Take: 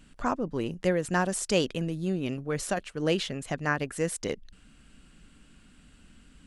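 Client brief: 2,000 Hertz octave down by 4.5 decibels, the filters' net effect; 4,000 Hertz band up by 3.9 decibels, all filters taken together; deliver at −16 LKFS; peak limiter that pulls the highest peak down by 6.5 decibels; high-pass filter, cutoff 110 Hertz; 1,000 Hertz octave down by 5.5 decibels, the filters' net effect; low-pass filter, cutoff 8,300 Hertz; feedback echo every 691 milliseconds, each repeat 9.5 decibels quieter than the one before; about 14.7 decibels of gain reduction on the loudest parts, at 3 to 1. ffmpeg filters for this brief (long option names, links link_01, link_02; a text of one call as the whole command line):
ffmpeg -i in.wav -af "highpass=110,lowpass=8300,equalizer=frequency=1000:width_type=o:gain=-6.5,equalizer=frequency=2000:width_type=o:gain=-6,equalizer=frequency=4000:width_type=o:gain=8.5,acompressor=threshold=-42dB:ratio=3,alimiter=level_in=8.5dB:limit=-24dB:level=0:latency=1,volume=-8.5dB,aecho=1:1:691|1382|2073|2764:0.335|0.111|0.0365|0.012,volume=27.5dB" out.wav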